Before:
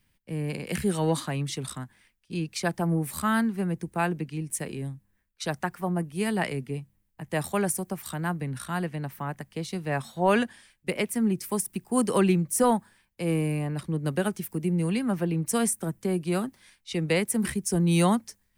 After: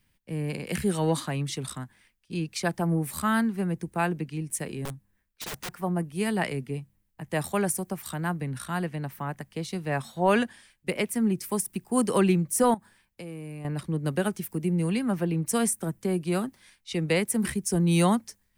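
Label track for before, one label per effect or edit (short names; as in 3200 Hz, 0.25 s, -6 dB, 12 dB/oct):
4.850000	5.690000	wrapped overs gain 30 dB
12.740000	13.650000	compressor 4:1, threshold -38 dBFS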